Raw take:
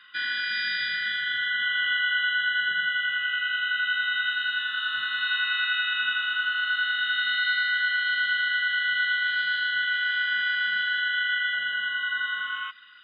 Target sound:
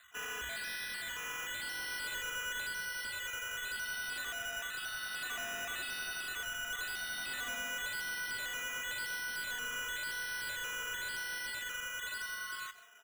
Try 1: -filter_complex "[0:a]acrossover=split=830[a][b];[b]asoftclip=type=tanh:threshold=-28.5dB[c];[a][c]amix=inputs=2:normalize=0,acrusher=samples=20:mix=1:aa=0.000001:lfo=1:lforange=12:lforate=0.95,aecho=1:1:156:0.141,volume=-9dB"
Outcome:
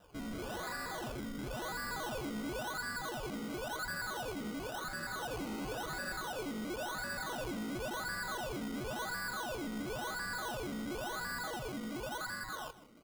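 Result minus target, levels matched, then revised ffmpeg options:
decimation with a swept rate: distortion +22 dB
-filter_complex "[0:a]acrossover=split=830[a][b];[b]asoftclip=type=tanh:threshold=-28.5dB[c];[a][c]amix=inputs=2:normalize=0,acrusher=samples=8:mix=1:aa=0.000001:lfo=1:lforange=4.8:lforate=0.95,aecho=1:1:156:0.141,volume=-9dB"

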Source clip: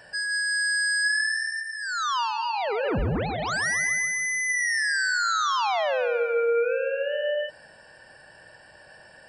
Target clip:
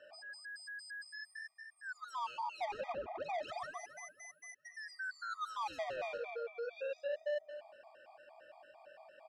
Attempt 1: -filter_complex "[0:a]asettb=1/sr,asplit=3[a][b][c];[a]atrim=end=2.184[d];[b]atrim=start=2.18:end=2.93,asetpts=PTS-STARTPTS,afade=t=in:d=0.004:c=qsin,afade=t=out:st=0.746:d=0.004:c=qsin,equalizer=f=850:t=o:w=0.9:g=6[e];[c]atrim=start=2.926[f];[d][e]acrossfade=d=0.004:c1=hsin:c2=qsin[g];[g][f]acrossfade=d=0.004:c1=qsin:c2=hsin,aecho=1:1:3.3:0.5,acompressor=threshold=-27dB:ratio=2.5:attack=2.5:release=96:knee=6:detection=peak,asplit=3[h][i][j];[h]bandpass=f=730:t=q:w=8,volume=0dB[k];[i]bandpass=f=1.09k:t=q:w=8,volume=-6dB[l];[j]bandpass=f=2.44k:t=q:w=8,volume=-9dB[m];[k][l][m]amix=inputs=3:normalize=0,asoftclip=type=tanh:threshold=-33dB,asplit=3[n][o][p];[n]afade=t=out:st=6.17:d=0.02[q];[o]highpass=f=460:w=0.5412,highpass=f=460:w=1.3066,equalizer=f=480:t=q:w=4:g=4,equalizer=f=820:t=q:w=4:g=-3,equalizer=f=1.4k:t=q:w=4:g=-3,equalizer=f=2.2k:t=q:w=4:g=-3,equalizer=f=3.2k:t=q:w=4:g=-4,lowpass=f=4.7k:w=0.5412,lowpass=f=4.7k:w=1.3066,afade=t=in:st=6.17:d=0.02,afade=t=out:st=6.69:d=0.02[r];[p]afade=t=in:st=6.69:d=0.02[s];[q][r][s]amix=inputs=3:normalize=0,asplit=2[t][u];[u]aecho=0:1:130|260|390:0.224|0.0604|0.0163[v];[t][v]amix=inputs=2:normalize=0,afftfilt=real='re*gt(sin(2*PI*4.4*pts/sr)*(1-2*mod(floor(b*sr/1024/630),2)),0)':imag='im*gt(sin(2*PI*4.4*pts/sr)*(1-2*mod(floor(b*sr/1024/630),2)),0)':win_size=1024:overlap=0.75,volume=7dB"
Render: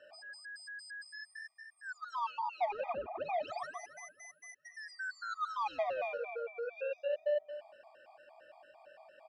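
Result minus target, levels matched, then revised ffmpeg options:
soft clip: distortion -9 dB
-filter_complex "[0:a]asettb=1/sr,asplit=3[a][b][c];[a]atrim=end=2.184[d];[b]atrim=start=2.18:end=2.93,asetpts=PTS-STARTPTS,afade=t=in:d=0.004:c=qsin,afade=t=out:st=0.746:d=0.004:c=qsin,equalizer=f=850:t=o:w=0.9:g=6[e];[c]atrim=start=2.926[f];[d][e]acrossfade=d=0.004:c1=hsin:c2=qsin[g];[g][f]acrossfade=d=0.004:c1=qsin:c2=hsin,aecho=1:1:3.3:0.5,acompressor=threshold=-27dB:ratio=2.5:attack=2.5:release=96:knee=6:detection=peak,asplit=3[h][i][j];[h]bandpass=f=730:t=q:w=8,volume=0dB[k];[i]bandpass=f=1.09k:t=q:w=8,volume=-6dB[l];[j]bandpass=f=2.44k:t=q:w=8,volume=-9dB[m];[k][l][m]amix=inputs=3:normalize=0,asoftclip=type=tanh:threshold=-41.5dB,asplit=3[n][o][p];[n]afade=t=out:st=6.17:d=0.02[q];[o]highpass=f=460:w=0.5412,highpass=f=460:w=1.3066,equalizer=f=480:t=q:w=4:g=4,equalizer=f=820:t=q:w=4:g=-3,equalizer=f=1.4k:t=q:w=4:g=-3,equalizer=f=2.2k:t=q:w=4:g=-3,equalizer=f=3.2k:t=q:w=4:g=-4,lowpass=f=4.7k:w=0.5412,lowpass=f=4.7k:w=1.3066,afade=t=in:st=6.17:d=0.02,afade=t=out:st=6.69:d=0.02[r];[p]afade=t=in:st=6.69:d=0.02[s];[q][r][s]amix=inputs=3:normalize=0,asplit=2[t][u];[u]aecho=0:1:130|260|390:0.224|0.0604|0.0163[v];[t][v]amix=inputs=2:normalize=0,afftfilt=real='re*gt(sin(2*PI*4.4*pts/sr)*(1-2*mod(floor(b*sr/1024/630),2)),0)':imag='im*gt(sin(2*PI*4.4*pts/sr)*(1-2*mod(floor(b*sr/1024/630),2)),0)':win_size=1024:overlap=0.75,volume=7dB"

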